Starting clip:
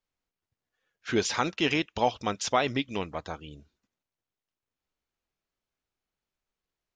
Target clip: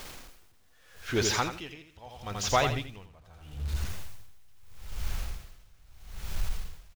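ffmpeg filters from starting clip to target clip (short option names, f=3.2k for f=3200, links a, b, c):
-filter_complex "[0:a]aeval=exprs='val(0)+0.5*0.0168*sgn(val(0))':c=same,asplit=2[a][b];[b]aecho=0:1:84|168|252|336:0.501|0.175|0.0614|0.0215[c];[a][c]amix=inputs=2:normalize=0,asubboost=boost=12:cutoff=85,aeval=exprs='val(0)*pow(10,-26*(0.5-0.5*cos(2*PI*0.78*n/s))/20)':c=same"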